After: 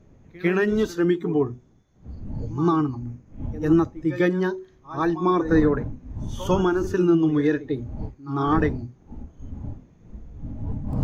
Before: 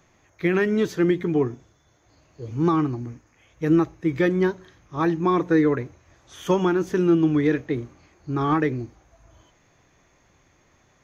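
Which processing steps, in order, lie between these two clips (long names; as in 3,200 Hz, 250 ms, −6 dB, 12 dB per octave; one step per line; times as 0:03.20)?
wind on the microphone 190 Hz −33 dBFS
hum removal 124.8 Hz, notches 4
echo ahead of the sound 99 ms −12 dB
noise reduction from a noise print of the clip's start 11 dB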